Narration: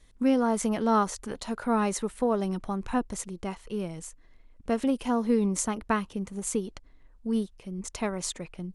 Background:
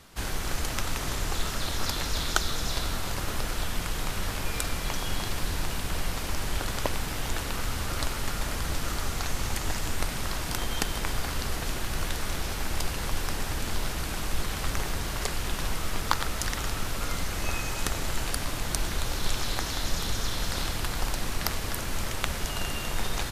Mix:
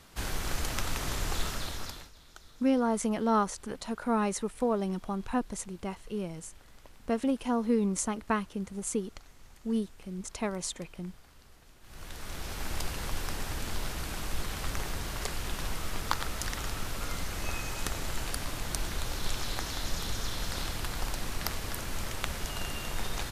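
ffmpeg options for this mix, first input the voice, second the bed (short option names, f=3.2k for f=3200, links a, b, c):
-filter_complex "[0:a]adelay=2400,volume=-2.5dB[a];[1:a]volume=19.5dB,afade=t=out:st=1.42:d=0.69:silence=0.0630957,afade=t=in:st=11.81:d=0.88:silence=0.0794328[b];[a][b]amix=inputs=2:normalize=0"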